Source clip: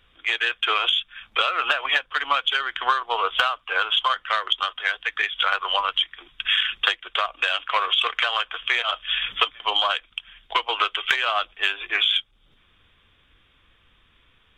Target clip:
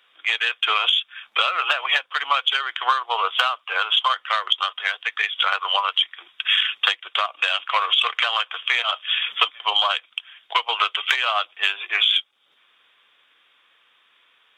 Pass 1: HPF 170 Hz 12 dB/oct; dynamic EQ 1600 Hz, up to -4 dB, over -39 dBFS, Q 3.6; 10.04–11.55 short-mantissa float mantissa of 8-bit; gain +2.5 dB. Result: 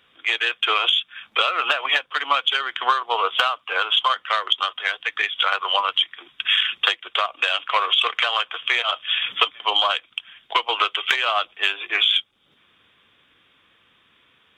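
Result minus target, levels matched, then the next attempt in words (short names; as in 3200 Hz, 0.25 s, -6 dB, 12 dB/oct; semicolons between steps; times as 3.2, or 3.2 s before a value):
125 Hz band +20.0 dB
HPF 620 Hz 12 dB/oct; dynamic EQ 1600 Hz, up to -4 dB, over -39 dBFS, Q 3.6; 10.04–11.55 short-mantissa float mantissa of 8-bit; gain +2.5 dB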